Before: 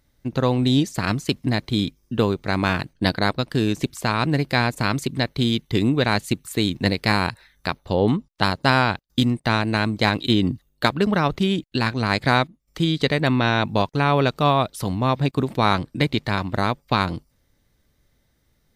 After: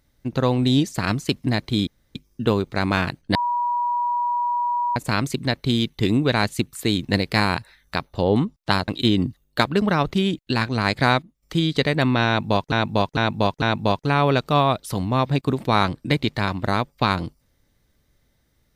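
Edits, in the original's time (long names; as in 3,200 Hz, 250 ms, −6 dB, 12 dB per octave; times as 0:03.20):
0:01.87: splice in room tone 0.28 s
0:03.07–0:04.68: beep over 965 Hz −19.5 dBFS
0:08.60–0:10.13: remove
0:13.52–0:13.97: repeat, 4 plays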